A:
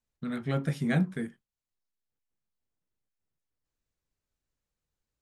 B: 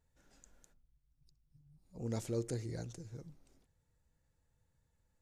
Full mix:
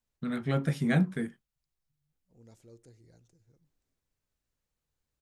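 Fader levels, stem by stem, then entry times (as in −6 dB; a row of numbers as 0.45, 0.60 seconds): +1.0, −18.0 decibels; 0.00, 0.35 seconds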